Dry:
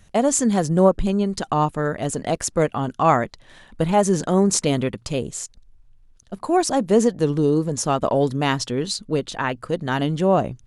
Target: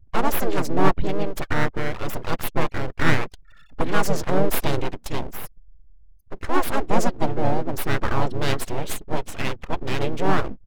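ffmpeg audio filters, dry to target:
-filter_complex "[0:a]afftfilt=real='re*gte(hypot(re,im),0.0126)':imag='im*gte(hypot(re,im),0.0126)':win_size=1024:overlap=0.75,aeval=exprs='abs(val(0))':c=same,asplit=4[s0][s1][s2][s3];[s1]asetrate=33038,aresample=44100,atempo=1.33484,volume=0.501[s4];[s2]asetrate=35002,aresample=44100,atempo=1.25992,volume=0.631[s5];[s3]asetrate=55563,aresample=44100,atempo=0.793701,volume=0.158[s6];[s0][s4][s5][s6]amix=inputs=4:normalize=0,volume=0.75"

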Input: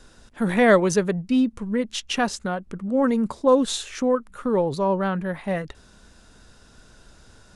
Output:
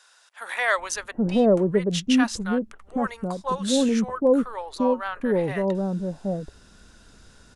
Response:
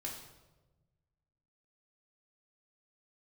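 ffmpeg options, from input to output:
-filter_complex "[0:a]acrossover=split=750[s0][s1];[s0]adelay=780[s2];[s2][s1]amix=inputs=2:normalize=0"

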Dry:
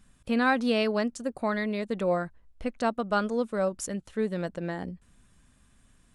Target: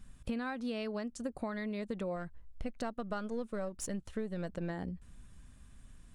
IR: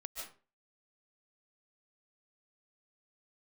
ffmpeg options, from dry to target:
-filter_complex "[0:a]asettb=1/sr,asplit=3[s0][s1][s2];[s0]atrim=end=2.164[s3];[s1]atrim=start=2.16:end=4.7,asetpts=PTS-STARTPTS,afade=t=in:d=0.004:c=qsin,afade=t=out:st=2.536:d=0.004:c=qsin,aeval=exprs='if(lt(val(0),0),0.708*val(0),val(0))':c=same[s4];[s2]atrim=start=4.696[s5];[s3][s4]acrossfade=d=0.004:c1=hsin:c2=qsin[s6];[s6][s5]acrossfade=d=0.004:c1=qsin:c2=hsin,lowshelf=f=130:g=10,acompressor=threshold=0.0224:ratio=10,volume=0.891"

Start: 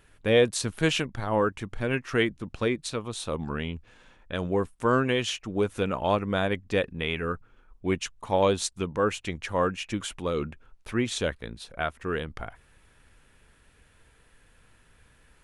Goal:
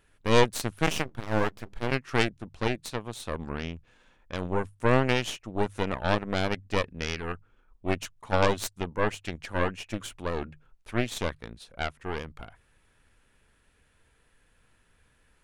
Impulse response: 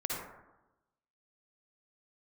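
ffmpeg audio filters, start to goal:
-filter_complex "[0:a]bandreject=f=50:t=h:w=6,bandreject=f=100:t=h:w=6,bandreject=f=150:t=h:w=6,aeval=exprs='0.335*(cos(1*acos(clip(val(0)/0.335,-1,1)))-cos(1*PI/2))+0.0531*(cos(3*acos(clip(val(0)/0.335,-1,1)))-cos(3*PI/2))+0.0944*(cos(4*acos(clip(val(0)/0.335,-1,1)))-cos(4*PI/2))':c=same,asplit=3[s0][s1][s2];[s0]afade=t=out:st=0.86:d=0.02[s3];[s1]aeval=exprs='abs(val(0))':c=same,afade=t=in:st=0.86:d=0.02,afade=t=out:st=1.9:d=0.02[s4];[s2]afade=t=in:st=1.9:d=0.02[s5];[s3][s4][s5]amix=inputs=3:normalize=0"

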